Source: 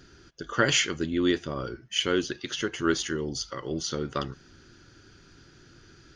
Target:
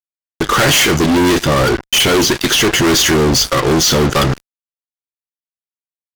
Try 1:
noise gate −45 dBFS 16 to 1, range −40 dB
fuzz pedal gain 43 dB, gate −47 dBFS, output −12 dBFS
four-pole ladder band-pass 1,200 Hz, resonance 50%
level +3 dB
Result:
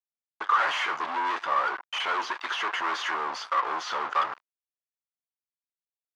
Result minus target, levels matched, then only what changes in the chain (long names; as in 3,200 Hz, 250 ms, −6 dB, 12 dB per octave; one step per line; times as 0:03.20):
1,000 Hz band +9.0 dB
remove: four-pole ladder band-pass 1,200 Hz, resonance 50%